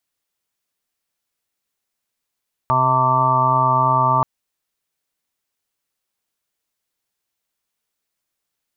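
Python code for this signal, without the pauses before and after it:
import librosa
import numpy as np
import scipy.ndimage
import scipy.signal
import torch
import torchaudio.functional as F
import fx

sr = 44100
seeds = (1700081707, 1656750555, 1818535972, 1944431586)

y = fx.additive_steady(sr, length_s=1.53, hz=129.0, level_db=-22.0, upper_db=(-9.0, -12.5, -19.5, -3, -13, 4.5, -3, 5.0))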